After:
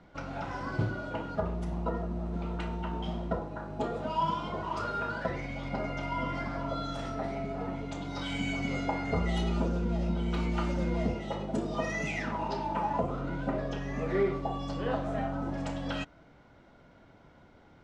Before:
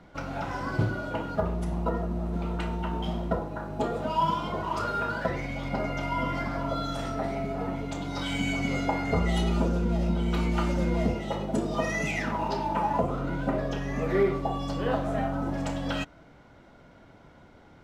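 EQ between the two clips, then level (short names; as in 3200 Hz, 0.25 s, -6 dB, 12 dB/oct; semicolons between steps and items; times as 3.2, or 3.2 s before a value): LPF 7200 Hz 12 dB/oct; -4.0 dB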